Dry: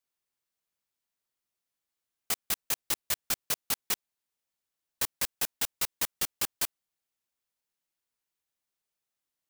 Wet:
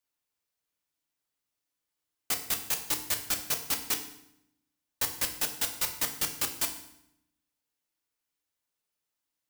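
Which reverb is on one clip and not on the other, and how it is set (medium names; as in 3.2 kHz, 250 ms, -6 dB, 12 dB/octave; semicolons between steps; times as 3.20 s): FDN reverb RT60 0.77 s, low-frequency decay 1.4×, high-frequency decay 0.9×, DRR 4 dB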